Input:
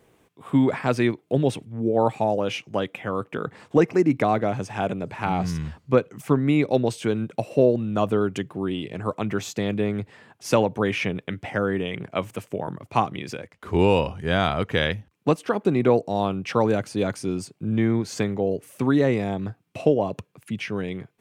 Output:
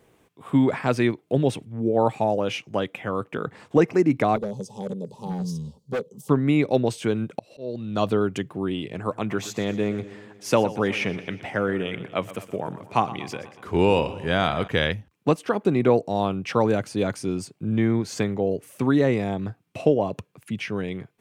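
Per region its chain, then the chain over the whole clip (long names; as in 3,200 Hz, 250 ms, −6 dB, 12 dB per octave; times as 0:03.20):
0:04.36–0:06.29: Chebyshev band-stop filter 650–3,700 Hz + phaser with its sweep stopped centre 460 Hz, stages 8 + hard clipping −23 dBFS
0:07.39–0:08.13: parametric band 4,200 Hz +13.5 dB 0.6 octaves + volume swells 494 ms
0:08.99–0:14.68: low-shelf EQ 73 Hz −8.5 dB + feedback echo with a swinging delay time 121 ms, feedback 60%, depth 59 cents, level −16 dB
whole clip: no processing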